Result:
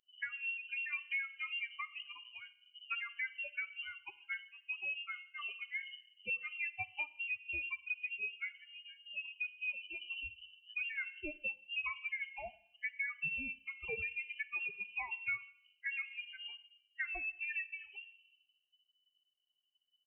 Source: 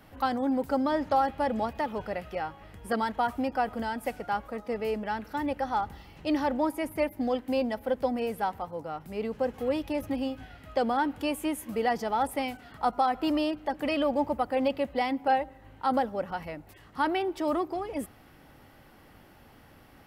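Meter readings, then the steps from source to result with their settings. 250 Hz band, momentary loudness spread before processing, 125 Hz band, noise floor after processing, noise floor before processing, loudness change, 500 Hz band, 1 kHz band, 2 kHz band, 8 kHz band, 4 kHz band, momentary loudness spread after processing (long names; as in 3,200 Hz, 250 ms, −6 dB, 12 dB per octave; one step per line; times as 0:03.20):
−31.5 dB, 9 LU, −19.5 dB, −82 dBFS, −55 dBFS, −10.0 dB, −28.0 dB, −26.0 dB, +1.5 dB, below −30 dB, −5.5 dB, 11 LU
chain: spectral dynamics exaggerated over time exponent 3
hum removal 279.4 Hz, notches 3
downward compressor, threshold −38 dBFS, peak gain reduction 14 dB
rectangular room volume 2,400 cubic metres, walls furnished, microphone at 0.63 metres
voice inversion scrambler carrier 3,000 Hz
level +1 dB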